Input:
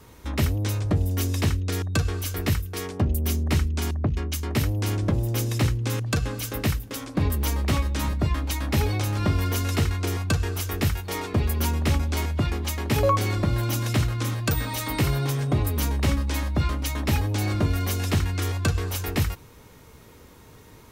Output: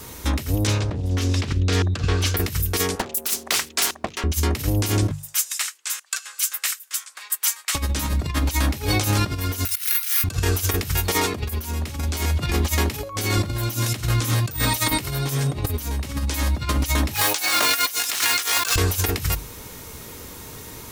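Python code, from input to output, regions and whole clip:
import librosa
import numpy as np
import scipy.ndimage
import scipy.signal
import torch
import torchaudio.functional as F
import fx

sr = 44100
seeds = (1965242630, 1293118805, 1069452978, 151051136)

y = fx.chain(x, sr, fx.lowpass(hz=4400.0, slope=12),
    fx.hum_notches(base_hz=50, count=8),
    fx.doppler_dist(depth_ms=0.27), at=(0.67, 2.37))
y = fx.chain(y, sr, fx.highpass(hz=680.0, slope=12),
    fx.doppler_dist(depth_ms=0.91), at=(2.95, 4.24))
y = fx.chain(y, sr, fx.ladder_highpass(hz=1100.0, resonance_pct=30),
    fx.peak_eq(hz=7900.0, db=8.0, octaves=0.67),
    fx.upward_expand(threshold_db=-50.0, expansion=1.5), at=(5.11, 7.75))
y = fx.chain(y, sr, fx.highpass(hz=1500.0, slope=24),
    fx.resample_bad(factor=3, down='filtered', up='zero_stuff'), at=(9.65, 10.24))
y = fx.chain(y, sr, fx.highpass(hz=990.0, slope=12),
    fx.mod_noise(seeds[0], snr_db=15),
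    fx.env_flatten(amount_pct=70), at=(17.14, 18.76))
y = fx.high_shelf(y, sr, hz=4000.0, db=11.0)
y = fx.hum_notches(y, sr, base_hz=50, count=3)
y = fx.over_compress(y, sr, threshold_db=-27.0, ratio=-0.5)
y = F.gain(torch.from_numpy(y), 5.5).numpy()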